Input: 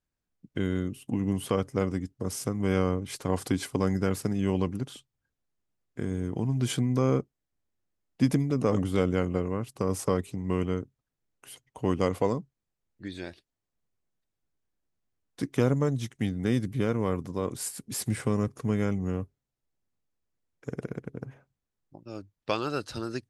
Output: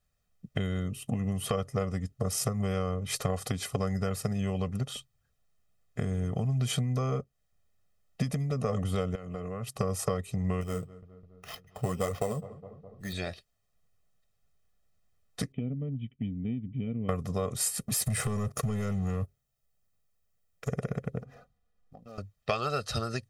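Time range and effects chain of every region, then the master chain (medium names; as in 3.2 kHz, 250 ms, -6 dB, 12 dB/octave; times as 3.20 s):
9.15–9.77 s: high-pass 100 Hz + compression 10:1, threshold -37 dBFS
10.61–13.13 s: flange 1.3 Hz, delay 1 ms, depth 8.8 ms, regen +45% + sample-rate reducer 8.2 kHz + filtered feedback delay 207 ms, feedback 72%, low-pass 1.4 kHz, level -21.5 dB
15.52–17.09 s: cascade formant filter i + distance through air 240 m
17.83–20.69 s: treble shelf 10 kHz +8.5 dB + waveshaping leveller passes 2 + compression 4:1, threshold -35 dBFS
21.21–22.18 s: median filter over 15 samples + comb 4.1 ms, depth 64% + compression 2.5:1, threshold -54 dBFS
whole clip: band-stop 530 Hz, Q 14; compression 6:1, threshold -33 dBFS; comb 1.6 ms, depth 84%; trim +5.5 dB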